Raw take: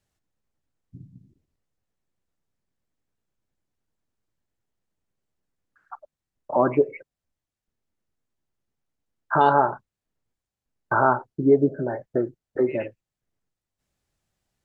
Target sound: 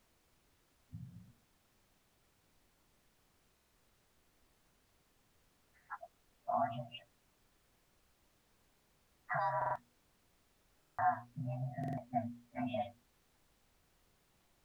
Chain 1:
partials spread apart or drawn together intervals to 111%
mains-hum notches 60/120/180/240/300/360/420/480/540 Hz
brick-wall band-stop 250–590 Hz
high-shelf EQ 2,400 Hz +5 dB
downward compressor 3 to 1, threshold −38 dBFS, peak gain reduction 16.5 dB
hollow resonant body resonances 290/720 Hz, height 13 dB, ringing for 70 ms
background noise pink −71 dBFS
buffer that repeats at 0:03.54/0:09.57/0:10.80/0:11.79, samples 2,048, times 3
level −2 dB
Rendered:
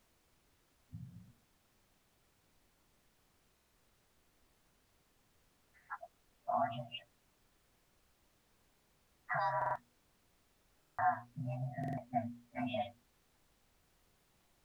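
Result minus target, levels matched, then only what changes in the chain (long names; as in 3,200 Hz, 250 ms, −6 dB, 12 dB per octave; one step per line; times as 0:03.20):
4,000 Hz band +5.0 dB
change: high-shelf EQ 2,400 Hz −4 dB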